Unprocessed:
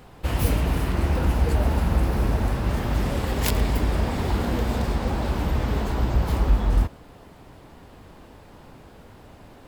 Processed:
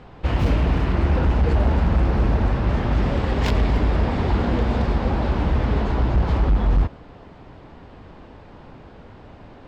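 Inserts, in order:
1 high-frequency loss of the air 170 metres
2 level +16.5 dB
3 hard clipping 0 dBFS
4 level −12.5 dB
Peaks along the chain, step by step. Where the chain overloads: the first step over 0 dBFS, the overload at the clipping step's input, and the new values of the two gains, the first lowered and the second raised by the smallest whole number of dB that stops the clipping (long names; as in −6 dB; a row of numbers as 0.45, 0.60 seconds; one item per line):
−8.5, +8.0, 0.0, −12.5 dBFS
step 2, 8.0 dB
step 2 +8.5 dB, step 4 −4.5 dB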